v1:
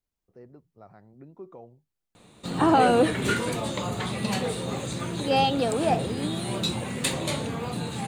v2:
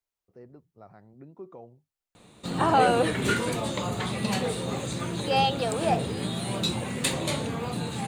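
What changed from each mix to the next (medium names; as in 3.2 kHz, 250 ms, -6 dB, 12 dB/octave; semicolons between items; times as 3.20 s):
second voice: add high-pass 510 Hz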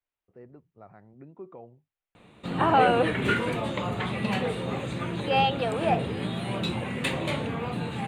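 master: add resonant high shelf 3.8 kHz -11 dB, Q 1.5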